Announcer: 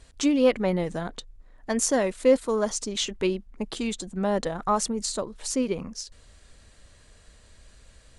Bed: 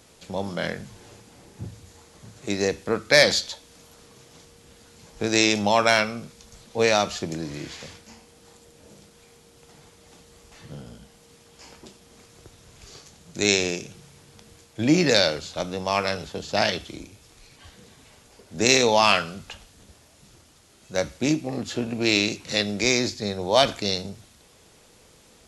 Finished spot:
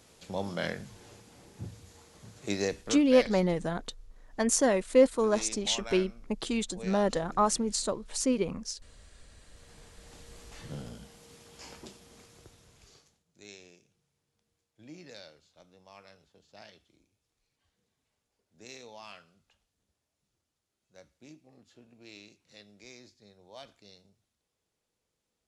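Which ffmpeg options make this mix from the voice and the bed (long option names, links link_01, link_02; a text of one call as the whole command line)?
ffmpeg -i stem1.wav -i stem2.wav -filter_complex "[0:a]adelay=2700,volume=-1.5dB[link_01];[1:a]volume=16.5dB,afade=type=out:start_time=2.51:duration=0.63:silence=0.133352,afade=type=in:start_time=9.29:duration=1.09:silence=0.0841395,afade=type=out:start_time=11.74:duration=1.5:silence=0.0375837[link_02];[link_01][link_02]amix=inputs=2:normalize=0" out.wav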